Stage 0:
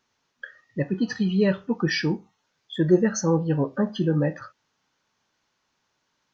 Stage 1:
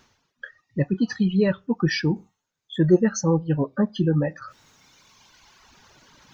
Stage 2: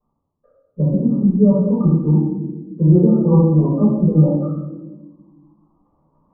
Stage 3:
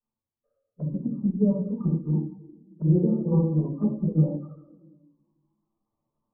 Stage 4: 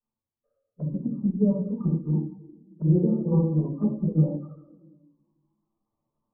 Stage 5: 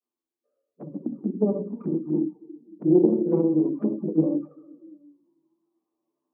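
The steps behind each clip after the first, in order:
reverb removal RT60 1.4 s; bass shelf 140 Hz +10 dB; reverse; upward compressor, threshold -35 dBFS; reverse
steep low-pass 1.2 kHz 96 dB/octave; gate -55 dBFS, range -11 dB; reverberation RT60 1.2 s, pre-delay 4 ms, DRR -11 dB; trim -13.5 dB
touch-sensitive flanger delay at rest 9 ms, full sweep at -10.5 dBFS; upward expansion 1.5:1, over -26 dBFS; trim -7.5 dB
no audible change
tracing distortion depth 0.21 ms; touch-sensitive flanger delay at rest 11.7 ms, full sweep at -20.5 dBFS; resonant high-pass 320 Hz, resonance Q 3.7

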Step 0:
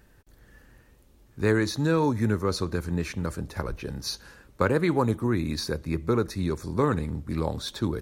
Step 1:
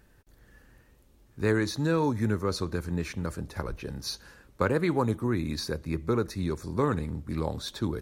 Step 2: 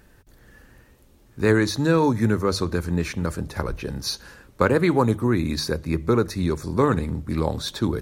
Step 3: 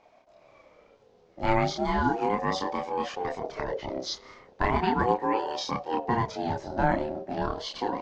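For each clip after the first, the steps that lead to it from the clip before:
wow and flutter 16 cents; trim -2.5 dB
hum notches 50/100/150 Hz; trim +7 dB
steep low-pass 5.9 kHz 36 dB/octave; chorus voices 2, 0.58 Hz, delay 29 ms, depth 2.2 ms; ring modulator with a swept carrier 560 Hz, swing 20%, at 0.36 Hz

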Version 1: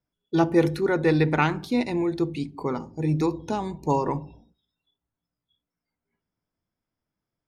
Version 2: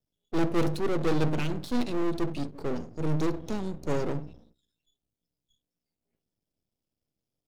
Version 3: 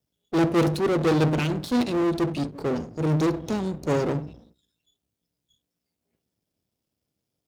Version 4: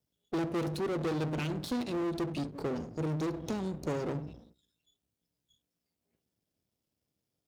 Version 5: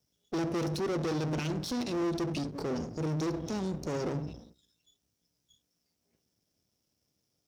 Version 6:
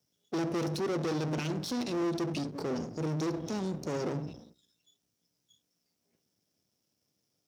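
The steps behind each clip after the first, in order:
high-order bell 1.3 kHz -13.5 dB; valve stage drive 22 dB, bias 0.7; half-wave rectifier; trim +7.5 dB
high-pass 55 Hz; trim +6 dB
compression, threshold -27 dBFS, peak gain reduction 10 dB; trim -3.5 dB
peaking EQ 5.6 kHz +11 dB 0.38 oct; peak limiter -29.5 dBFS, peak gain reduction 9.5 dB; trim +4 dB
high-pass 110 Hz 12 dB/octave

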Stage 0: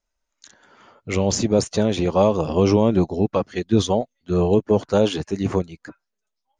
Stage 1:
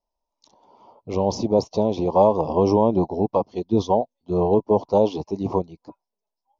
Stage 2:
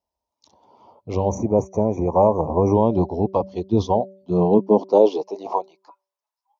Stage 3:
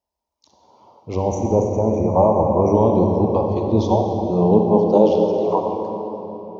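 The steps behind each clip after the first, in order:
FFT filter 120 Hz 0 dB, 550 Hz +6 dB, 980 Hz +12 dB, 1.6 kHz -29 dB, 2.3 kHz -10 dB, 5.6 kHz 0 dB, 8.2 kHz -27 dB; trim -5.5 dB
de-hum 192.3 Hz, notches 3; high-pass sweep 73 Hz -> 1.1 kHz, 3.91–5.84 s; time-frequency box 1.29–2.75 s, 2.5–5.7 kHz -30 dB
reverberation RT60 3.8 s, pre-delay 34 ms, DRR 1.5 dB

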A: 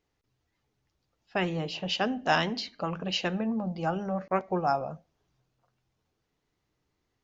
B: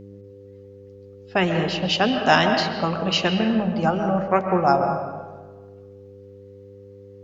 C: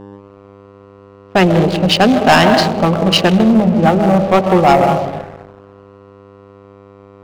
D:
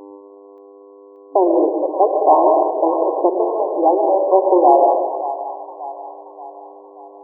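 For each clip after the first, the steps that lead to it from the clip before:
mains buzz 100 Hz, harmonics 5, -50 dBFS -2 dB/octave; on a send at -5 dB: reverberation RT60 1.3 s, pre-delay 91 ms; on the sum: trim +8 dB
local Wiener filter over 25 samples; waveshaping leveller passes 3; trim +1 dB
FFT band-pass 280–1100 Hz; two-band feedback delay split 700 Hz, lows 105 ms, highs 580 ms, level -10 dB; trim -1 dB

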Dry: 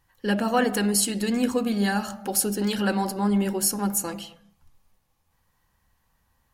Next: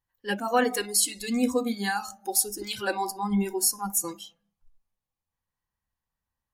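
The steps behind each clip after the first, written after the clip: spectral noise reduction 19 dB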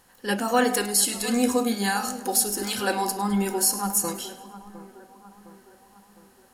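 spectral levelling over time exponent 0.6; two-band feedback delay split 1.7 kHz, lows 709 ms, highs 104 ms, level -15.5 dB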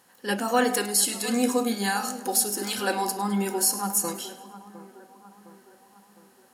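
high-pass 150 Hz 12 dB/octave; trim -1 dB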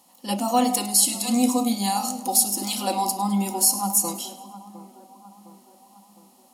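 static phaser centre 430 Hz, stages 6; trim +4.5 dB

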